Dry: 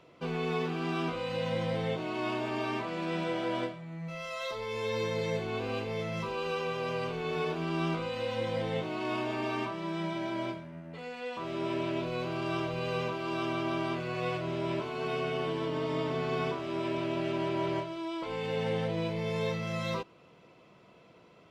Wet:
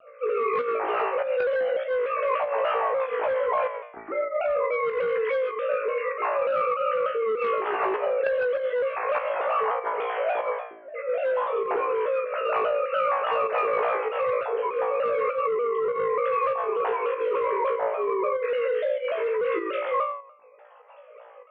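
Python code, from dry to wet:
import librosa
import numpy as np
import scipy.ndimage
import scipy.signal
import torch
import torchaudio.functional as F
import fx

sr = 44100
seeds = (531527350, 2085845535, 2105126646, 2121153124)

p1 = fx.sine_speech(x, sr)
p2 = fx.dereverb_blind(p1, sr, rt60_s=1.6)
p3 = p2 + fx.room_flutter(p2, sr, wall_m=3.0, rt60_s=0.54, dry=0)
p4 = fx.cheby_harmonics(p3, sr, harmonics=(3, 5), levels_db=(-7, -9), full_scale_db=-13.0)
p5 = scipy.signal.sosfilt(scipy.signal.butter(2, 1500.0, 'lowpass', fs=sr, output='sos'), p4)
p6 = p5 + 10.0 ** (-14.0 / 20.0) * np.pad(p5, (int(133 * sr / 1000.0), 0))[:len(p5)]
p7 = fx.over_compress(p6, sr, threshold_db=-31.0, ratio=-1.0)
p8 = p6 + (p7 * 10.0 ** (2.5 / 20.0))
p9 = fx.low_shelf(p8, sr, hz=300.0, db=-12.0)
p10 = fx.volume_shaper(p9, sr, bpm=98, per_beat=1, depth_db=-6, release_ms=67.0, shape='slow start')
p11 = fx.vibrato_shape(p10, sr, shape='saw_down', rate_hz=3.4, depth_cents=100.0)
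y = p11 * 10.0 ** (1.5 / 20.0)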